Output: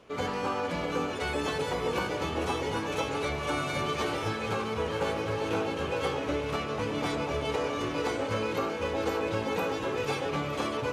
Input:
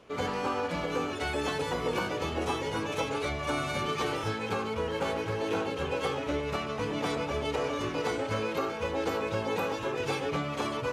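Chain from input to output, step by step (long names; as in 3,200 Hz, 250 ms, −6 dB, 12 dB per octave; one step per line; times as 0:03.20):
on a send: delay that swaps between a low-pass and a high-pass 228 ms, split 910 Hz, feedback 88%, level −11 dB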